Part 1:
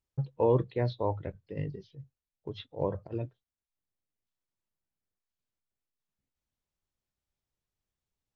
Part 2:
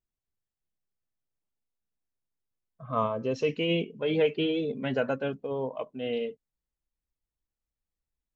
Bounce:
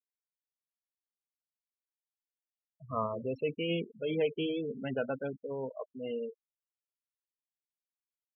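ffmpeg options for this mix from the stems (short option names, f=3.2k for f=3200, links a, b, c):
-filter_complex "[0:a]asoftclip=type=tanh:threshold=-30dB,volume=-12dB[a];[1:a]volume=-5.5dB,asplit=2[b][c];[c]apad=whole_len=368593[d];[a][d]sidechaingate=range=-33dB:threshold=-44dB:ratio=16:detection=peak[e];[e][b]amix=inputs=2:normalize=0,afftfilt=real='re*gte(hypot(re,im),0.02)':imag='im*gte(hypot(re,im),0.02)':win_size=1024:overlap=0.75"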